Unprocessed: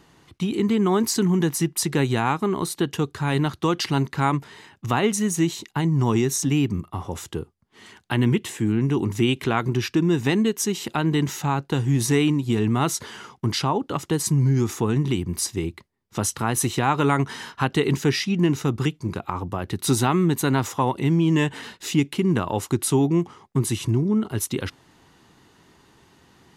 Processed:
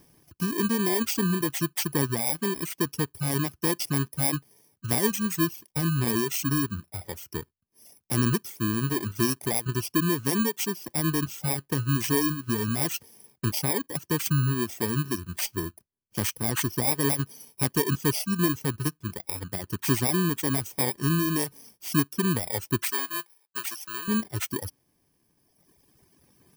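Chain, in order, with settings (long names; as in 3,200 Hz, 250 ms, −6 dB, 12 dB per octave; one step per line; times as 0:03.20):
samples in bit-reversed order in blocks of 32 samples
reverb reduction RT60 1.9 s
0:22.84–0:24.08: high-pass filter 830 Hz 12 dB per octave
level −3 dB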